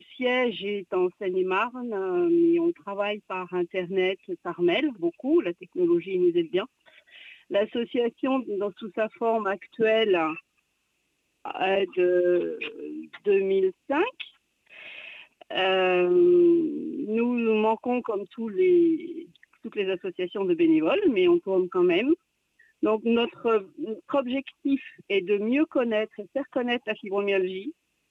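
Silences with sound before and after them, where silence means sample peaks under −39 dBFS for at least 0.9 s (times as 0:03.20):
0:10.39–0:11.45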